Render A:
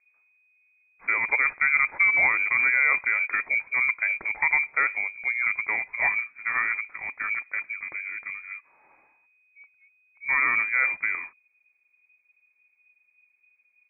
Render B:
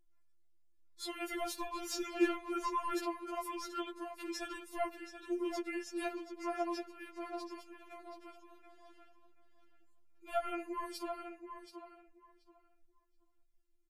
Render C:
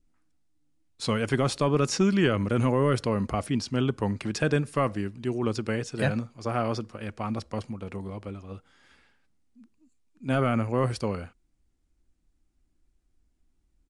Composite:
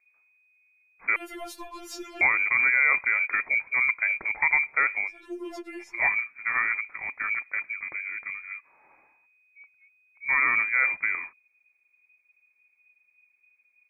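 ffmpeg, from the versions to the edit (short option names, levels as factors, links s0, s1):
-filter_complex "[1:a]asplit=2[s0][s1];[0:a]asplit=3[s2][s3][s4];[s2]atrim=end=1.162[s5];[s0]atrim=start=1.158:end=2.212[s6];[s3]atrim=start=2.208:end=5.25[s7];[s1]atrim=start=5.01:end=6.02[s8];[s4]atrim=start=5.78[s9];[s5][s6]acrossfade=d=0.004:c1=hsin:c2=hsin[s10];[s10][s7]acrossfade=d=0.004:c1=hsin:c2=hsin[s11];[s11][s8]acrossfade=d=0.24:c1=tri:c2=tri[s12];[s12][s9]acrossfade=d=0.24:c1=tri:c2=tri"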